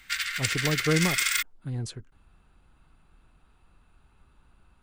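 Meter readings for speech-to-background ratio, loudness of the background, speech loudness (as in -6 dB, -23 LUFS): -4.0 dB, -26.5 LUFS, -30.5 LUFS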